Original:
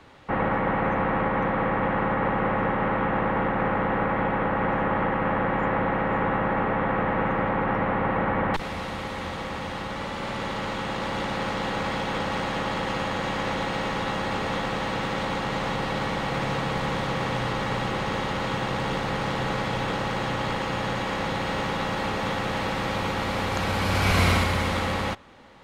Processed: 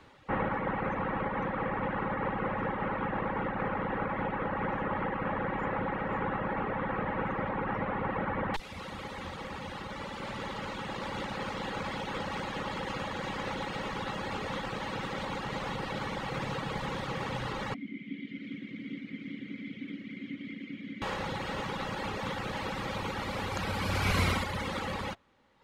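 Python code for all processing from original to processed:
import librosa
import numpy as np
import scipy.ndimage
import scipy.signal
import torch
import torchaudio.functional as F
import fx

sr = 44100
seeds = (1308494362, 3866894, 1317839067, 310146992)

y = fx.chain(x, sr, fx.vowel_filter(vowel='i'),
    fx.small_body(hz=(200.0, 2100.0), ring_ms=25, db=12), at=(17.74, 21.02))
y = fx.dereverb_blind(y, sr, rt60_s=1.3)
y = fx.notch(y, sr, hz=690.0, q=12.0)
y = y * 10.0 ** (-4.5 / 20.0)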